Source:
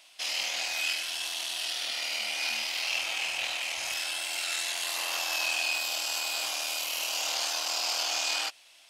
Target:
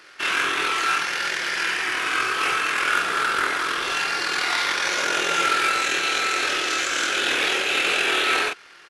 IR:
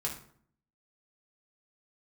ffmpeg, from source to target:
-filter_complex "[0:a]acrusher=bits=3:mode=log:mix=0:aa=0.000001,asplit=2[a][b];[b]adelay=34,volume=-4dB[c];[a][c]amix=inputs=2:normalize=0,asetrate=23361,aresample=44100,atempo=1.88775,volume=8dB"

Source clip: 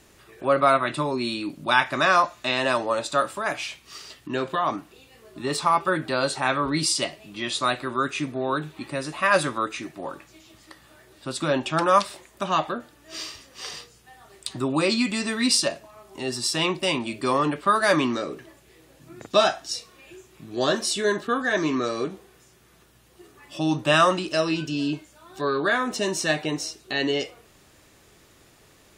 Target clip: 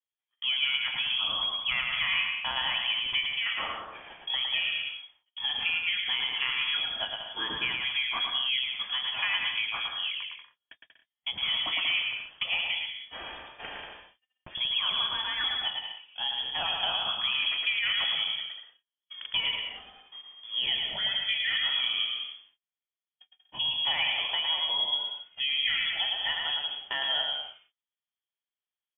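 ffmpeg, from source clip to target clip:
-filter_complex "[0:a]lowshelf=f=200:t=q:w=1.5:g=-7,agate=range=-44dB:threshold=-43dB:ratio=16:detection=peak,acompressor=threshold=-28dB:ratio=5,asplit=2[a][b];[b]aecho=0:1:110|187|240.9|278.6|305:0.631|0.398|0.251|0.158|0.1[c];[a][c]amix=inputs=2:normalize=0,lowpass=f=3.1k:t=q:w=0.5098,lowpass=f=3.1k:t=q:w=0.6013,lowpass=f=3.1k:t=q:w=0.9,lowpass=f=3.1k:t=q:w=2.563,afreqshift=-3600"

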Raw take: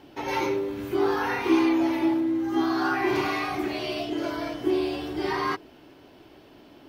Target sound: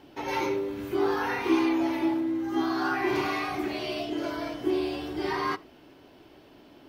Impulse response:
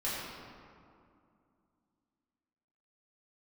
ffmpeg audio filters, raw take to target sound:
-filter_complex "[0:a]asplit=2[a][b];[1:a]atrim=start_sample=2205,atrim=end_sample=4410[c];[b][c]afir=irnorm=-1:irlink=0,volume=-21dB[d];[a][d]amix=inputs=2:normalize=0,volume=-2.5dB"

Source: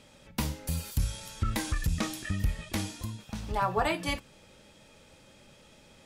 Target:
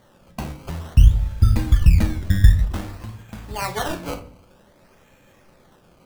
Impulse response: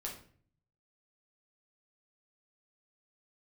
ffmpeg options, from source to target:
-filter_complex "[0:a]asettb=1/sr,asplit=3[a][b][c];[a]atrim=end=0.944[d];[b]atrim=start=0.94:end=2.64,asetpts=PTS-STARTPTS,afade=t=in:d=0.004:c=qsin,afade=t=out:st=1.696:d=0.004:c=qsin,aemphasis=mode=reproduction:type=riaa[e];[c]atrim=start=2.636[f];[d][e]acrossfade=d=0.004:c1=hsin:c2=qsin[g];[g][f]acrossfade=d=0.004:c1=qsin:c2=hsin,acrusher=samples=17:mix=1:aa=0.000001:lfo=1:lforange=17:lforate=0.53,asplit=2[h][i];[1:a]atrim=start_sample=2205[j];[i][j]afir=irnorm=-1:irlink=0,volume=-0.5dB[k];[h][k]amix=inputs=2:normalize=0,volume=-2.5dB"

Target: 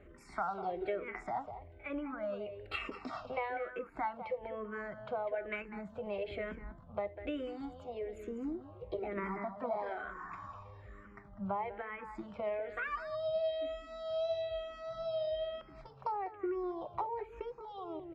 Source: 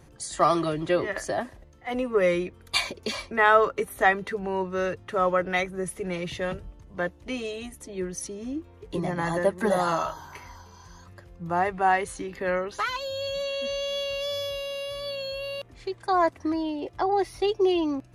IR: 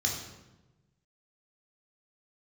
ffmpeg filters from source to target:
-filter_complex "[0:a]asetrate=50951,aresample=44100,atempo=0.865537,lowpass=1.5k,equalizer=f=120:t=o:w=2.4:g=-7.5,acompressor=threshold=-35dB:ratio=6,bandreject=f=450:w=12,asplit=2[a][b];[b]adelay=198.3,volume=-11dB,highshelf=f=4k:g=-4.46[c];[a][c]amix=inputs=2:normalize=0,asplit=2[d][e];[1:a]atrim=start_sample=2205,afade=t=out:st=0.13:d=0.01,atrim=end_sample=6174,asetrate=41013,aresample=44100[f];[e][f]afir=irnorm=-1:irlink=0,volume=-21dB[g];[d][g]amix=inputs=2:normalize=0,asplit=2[h][i];[i]afreqshift=-1.1[j];[h][j]amix=inputs=2:normalize=1,volume=3.5dB"

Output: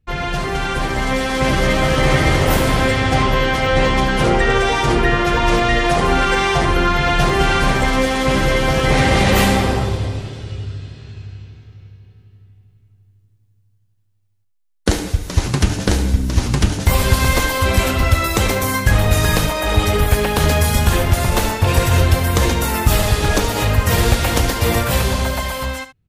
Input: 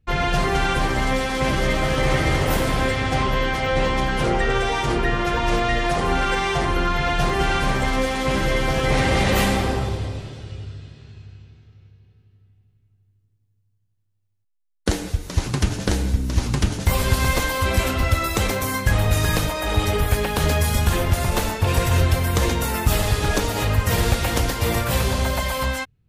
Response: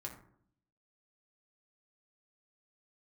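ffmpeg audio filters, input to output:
-filter_complex "[0:a]dynaudnorm=f=200:g=11:m=9dB,asplit=2[a][b];[b]aecho=0:1:72:0.224[c];[a][c]amix=inputs=2:normalize=0,volume=-1dB"

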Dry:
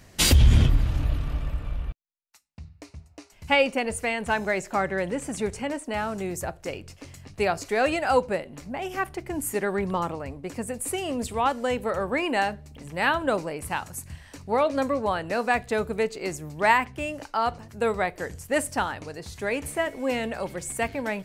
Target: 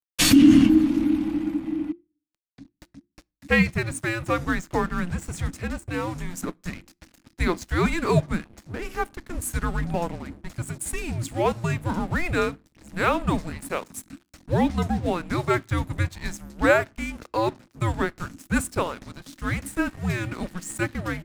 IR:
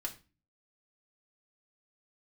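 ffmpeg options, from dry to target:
-filter_complex "[0:a]aeval=exprs='sgn(val(0))*max(abs(val(0))-0.00841,0)':c=same,afreqshift=-350,asplit=2[a][b];[1:a]atrim=start_sample=2205[c];[b][c]afir=irnorm=-1:irlink=0,volume=-20.5dB[d];[a][d]amix=inputs=2:normalize=0,volume=1.5dB"

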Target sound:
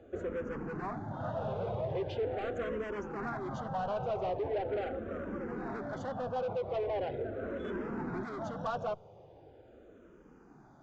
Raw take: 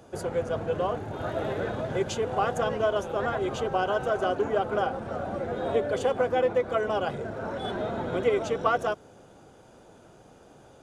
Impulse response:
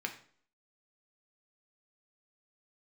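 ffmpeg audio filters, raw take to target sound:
-filter_complex "[0:a]aresample=16000,asoftclip=type=hard:threshold=-28dB,aresample=44100,lowpass=f=1.1k:p=1,asplit=2[a][b];[b]afreqshift=-0.41[c];[a][c]amix=inputs=2:normalize=1"

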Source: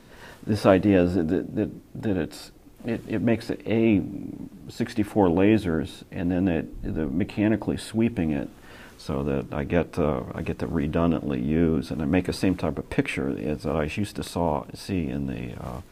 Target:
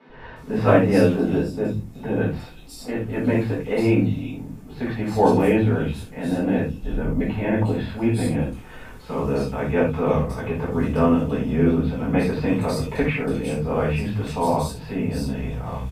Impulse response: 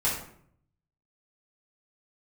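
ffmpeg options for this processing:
-filter_complex "[0:a]acrossover=split=190|3500[a][b][c];[a]adelay=90[d];[c]adelay=360[e];[d][b][e]amix=inputs=3:normalize=0[f];[1:a]atrim=start_sample=2205,atrim=end_sample=4410[g];[f][g]afir=irnorm=-1:irlink=0,volume=-5dB"

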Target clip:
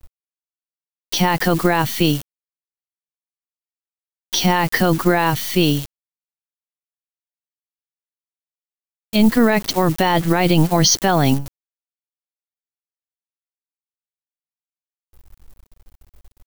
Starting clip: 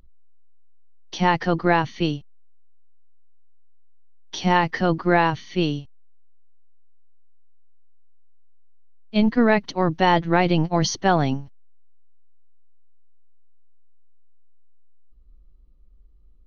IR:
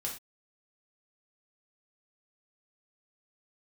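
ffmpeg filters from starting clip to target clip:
-af "acrusher=bits=8:dc=4:mix=0:aa=0.000001,aemphasis=mode=production:type=50kf,alimiter=level_in=11.5dB:limit=-1dB:release=50:level=0:latency=1,volume=-3.5dB"

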